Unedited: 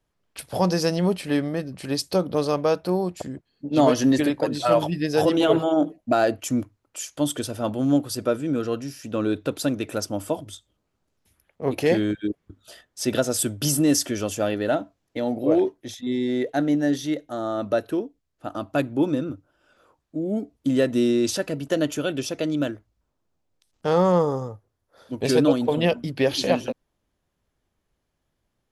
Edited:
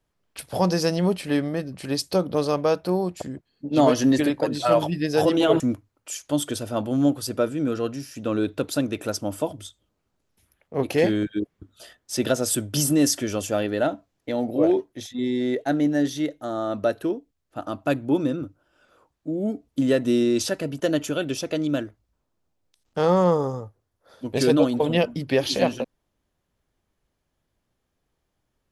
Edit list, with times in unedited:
5.6–6.48 cut

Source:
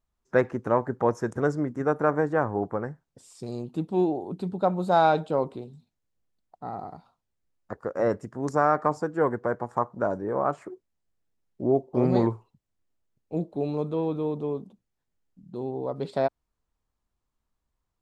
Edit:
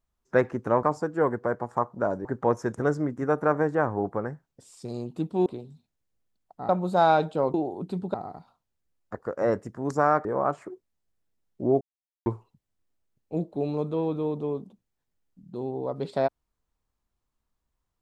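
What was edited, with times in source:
4.04–4.64 swap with 5.49–6.72
8.83–10.25 move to 0.83
11.81–12.26 mute

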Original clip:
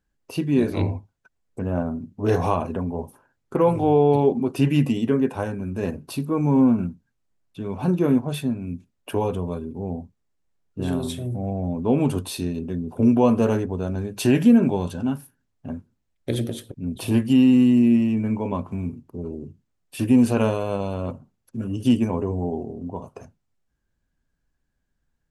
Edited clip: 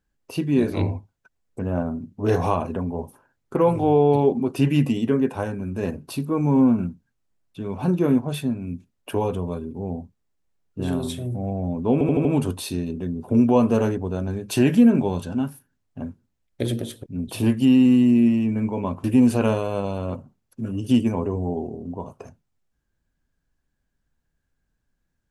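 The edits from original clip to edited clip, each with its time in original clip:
11.93 stutter 0.08 s, 5 plays
18.72–20 cut

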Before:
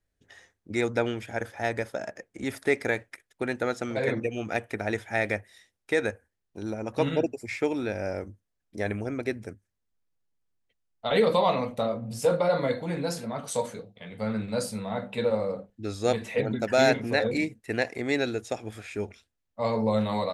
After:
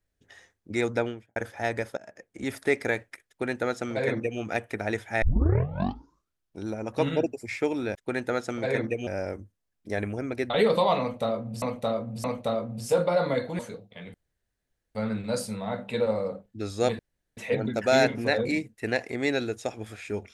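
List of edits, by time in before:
0.93–1.36 studio fade out
1.97–2.43 fade in, from -19.5 dB
3.28–4.4 copy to 7.95
5.22 tape start 1.43 s
9.38–11.07 cut
11.57–12.19 loop, 3 plays
12.92–13.64 cut
14.19 insert room tone 0.81 s
16.23 insert room tone 0.38 s

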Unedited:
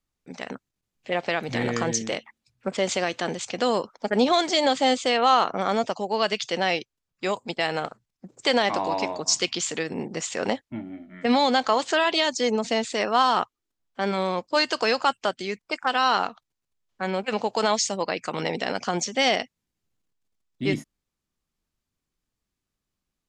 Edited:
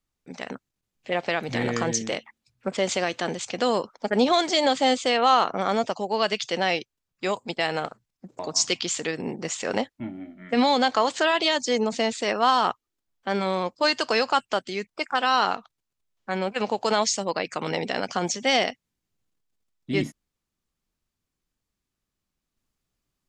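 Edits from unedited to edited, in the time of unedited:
8.39–9.11 cut

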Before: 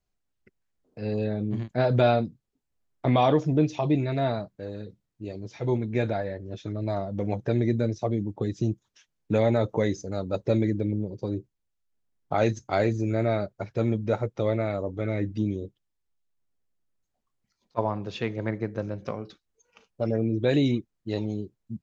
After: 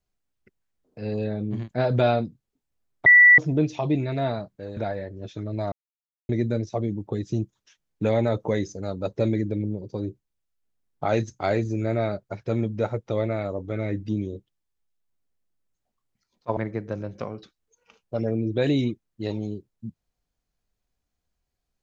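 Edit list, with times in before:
3.06–3.38 bleep 1960 Hz -9 dBFS
4.77–6.06 cut
7.01–7.58 mute
17.86–18.44 cut

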